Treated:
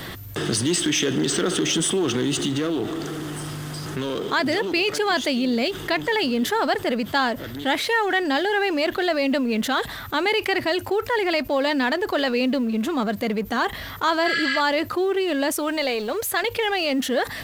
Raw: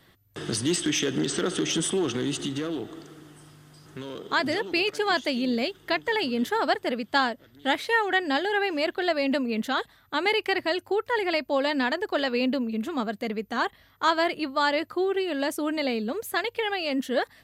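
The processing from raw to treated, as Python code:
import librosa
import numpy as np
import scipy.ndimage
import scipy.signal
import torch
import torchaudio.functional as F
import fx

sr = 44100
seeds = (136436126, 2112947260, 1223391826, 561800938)

y = fx.law_mismatch(x, sr, coded='mu')
y = fx.spec_repair(y, sr, seeds[0], start_s=14.27, length_s=0.31, low_hz=1200.0, high_hz=8700.0, source='before')
y = fx.peak_eq(y, sr, hz=210.0, db=-14.0, octaves=0.98, at=(15.52, 16.43))
y = fx.env_flatten(y, sr, amount_pct=50)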